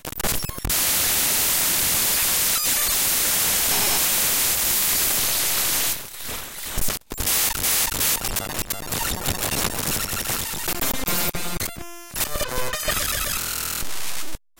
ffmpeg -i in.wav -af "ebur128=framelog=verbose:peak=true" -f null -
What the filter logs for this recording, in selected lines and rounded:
Integrated loudness:
  I:         -20.4 LUFS
  Threshold: -30.4 LUFS
Loudness range:
  LRA:         6.6 LU
  Threshold: -40.3 LUFS
  LRA low:   -24.2 LUFS
  LRA high:  -17.6 LUFS
True peak:
  Peak:      -10.2 dBFS